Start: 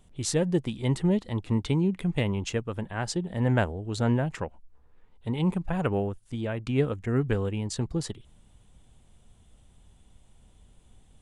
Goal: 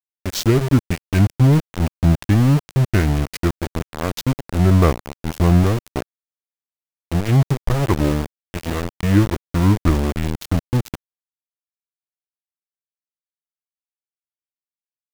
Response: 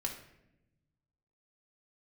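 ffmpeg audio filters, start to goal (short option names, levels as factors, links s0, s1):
-af "asetrate=32667,aresample=44100,aeval=exprs='val(0)*gte(abs(val(0)),0.0447)':c=same,lowshelf=f=200:g=6,volume=2.24"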